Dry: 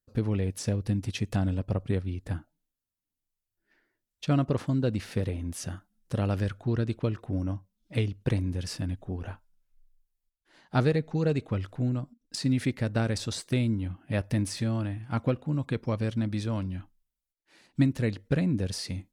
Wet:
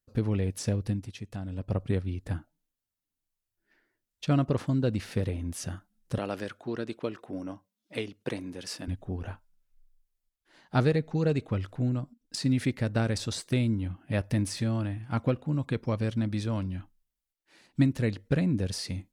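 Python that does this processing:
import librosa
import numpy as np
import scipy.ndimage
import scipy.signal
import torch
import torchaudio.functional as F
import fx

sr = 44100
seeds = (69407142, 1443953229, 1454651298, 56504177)

y = fx.highpass(x, sr, hz=290.0, slope=12, at=(6.18, 8.88))
y = fx.edit(y, sr, fx.fade_down_up(start_s=0.83, length_s=0.93, db=-10.0, fade_s=0.28), tone=tone)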